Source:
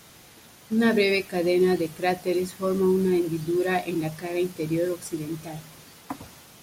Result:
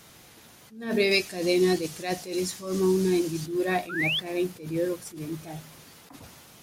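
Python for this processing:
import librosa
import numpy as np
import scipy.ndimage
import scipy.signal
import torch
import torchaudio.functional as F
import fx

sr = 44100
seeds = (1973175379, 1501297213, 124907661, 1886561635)

y = fx.peak_eq(x, sr, hz=6200.0, db=11.0, octaves=1.7, at=(1.11, 3.46))
y = fx.spec_paint(y, sr, seeds[0], shape='rise', start_s=3.89, length_s=0.31, low_hz=1300.0, high_hz=3600.0, level_db=-25.0)
y = fx.attack_slew(y, sr, db_per_s=110.0)
y = y * 10.0 ** (-1.5 / 20.0)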